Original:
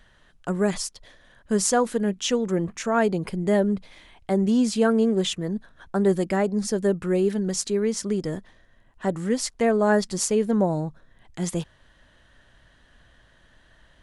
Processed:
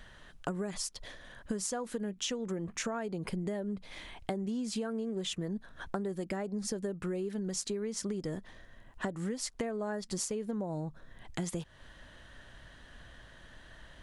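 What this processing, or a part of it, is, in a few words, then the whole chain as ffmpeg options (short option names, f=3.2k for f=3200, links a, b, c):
serial compression, leveller first: -af "acompressor=threshold=-24dB:ratio=2.5,acompressor=threshold=-36dB:ratio=10,volume=3.5dB"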